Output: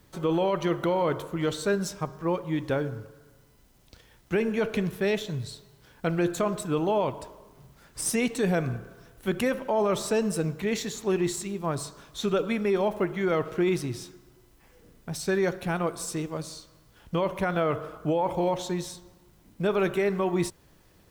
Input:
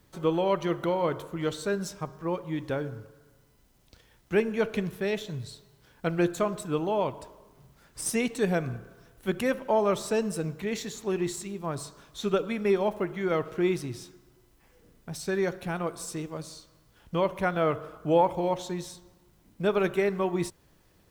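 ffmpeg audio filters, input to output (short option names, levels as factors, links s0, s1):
-af "alimiter=limit=0.0944:level=0:latency=1:release=17,volume=1.5"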